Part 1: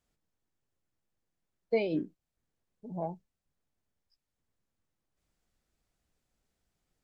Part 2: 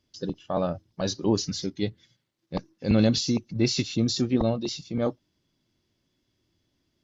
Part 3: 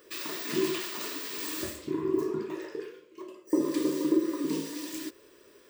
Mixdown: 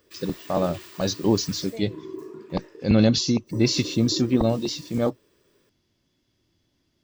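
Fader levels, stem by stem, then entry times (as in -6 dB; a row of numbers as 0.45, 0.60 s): -11.0, +3.0, -8.5 dB; 0.00, 0.00, 0.00 s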